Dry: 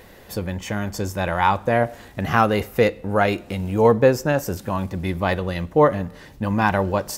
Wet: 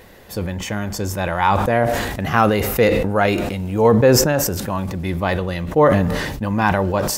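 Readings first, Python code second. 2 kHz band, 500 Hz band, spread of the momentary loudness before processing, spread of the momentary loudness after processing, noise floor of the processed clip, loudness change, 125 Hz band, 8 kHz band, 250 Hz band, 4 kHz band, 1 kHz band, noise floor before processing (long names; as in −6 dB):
+2.5 dB, +2.5 dB, 11 LU, 11 LU, −32 dBFS, +3.0 dB, +4.0 dB, +11.5 dB, +3.5 dB, +7.0 dB, +2.0 dB, −45 dBFS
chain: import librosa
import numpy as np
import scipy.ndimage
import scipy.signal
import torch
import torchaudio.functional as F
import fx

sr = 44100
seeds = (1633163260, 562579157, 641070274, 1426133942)

y = fx.sustainer(x, sr, db_per_s=35.0)
y = y * librosa.db_to_amplitude(1.0)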